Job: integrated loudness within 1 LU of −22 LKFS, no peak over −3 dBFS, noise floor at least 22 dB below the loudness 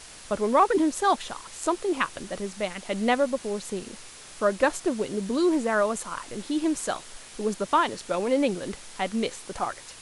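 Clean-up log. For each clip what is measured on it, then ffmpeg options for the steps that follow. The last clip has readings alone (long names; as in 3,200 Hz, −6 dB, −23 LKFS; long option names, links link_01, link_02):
background noise floor −46 dBFS; target noise floor −49 dBFS; integrated loudness −27.0 LKFS; sample peak −8.5 dBFS; target loudness −22.0 LKFS
→ -af "afftdn=noise_reduction=6:noise_floor=-46"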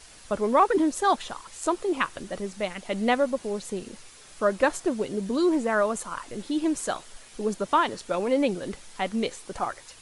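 background noise floor −49 dBFS; integrated loudness −27.0 LKFS; sample peak −8.5 dBFS; target loudness −22.0 LKFS
→ -af "volume=5dB"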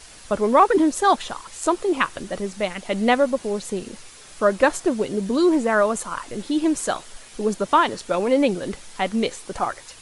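integrated loudness −22.0 LKFS; sample peak −3.5 dBFS; background noise floor −44 dBFS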